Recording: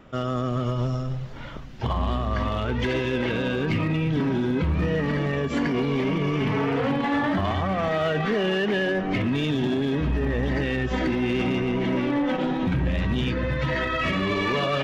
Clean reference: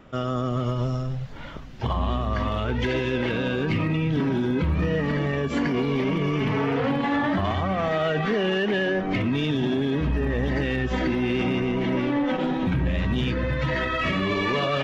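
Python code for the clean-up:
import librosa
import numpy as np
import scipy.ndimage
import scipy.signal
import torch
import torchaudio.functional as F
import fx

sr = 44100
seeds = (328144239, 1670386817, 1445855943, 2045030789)

y = fx.fix_declip(x, sr, threshold_db=-18.0)
y = fx.fix_echo_inverse(y, sr, delay_ms=450, level_db=-19.5)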